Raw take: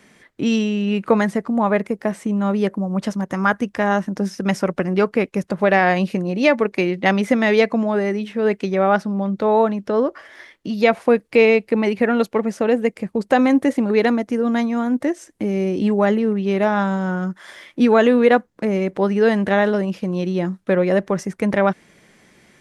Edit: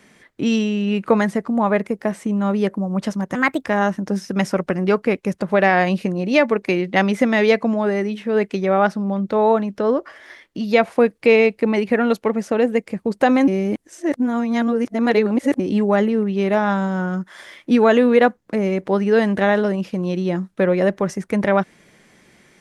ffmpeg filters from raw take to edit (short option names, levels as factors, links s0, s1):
-filter_complex "[0:a]asplit=5[s0][s1][s2][s3][s4];[s0]atrim=end=3.354[s5];[s1]atrim=start=3.35:end=3.74,asetpts=PTS-STARTPTS,asetrate=58212,aresample=44100[s6];[s2]atrim=start=3.736:end=13.572[s7];[s3]atrim=start=13.568:end=15.692,asetpts=PTS-STARTPTS,areverse[s8];[s4]atrim=start=15.688[s9];[s5][s6]acrossfade=d=0.004:c1=hsin:c2=hsin[s10];[s10][s7]acrossfade=d=0.004:c1=hsin:c2=hsin[s11];[s11][s8]acrossfade=d=0.004:c1=hsin:c2=hsin[s12];[s12][s9]acrossfade=d=0.004:c1=hsin:c2=hsin"